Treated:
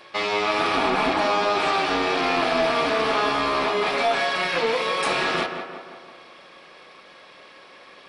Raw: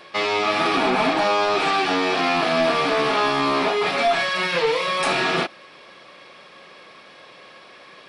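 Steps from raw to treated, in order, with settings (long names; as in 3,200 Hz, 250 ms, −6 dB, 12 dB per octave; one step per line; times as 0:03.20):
low-shelf EQ 180 Hz −5.5 dB
amplitude modulation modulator 220 Hz, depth 35%
on a send: tape delay 174 ms, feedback 61%, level −6 dB, low-pass 2,000 Hz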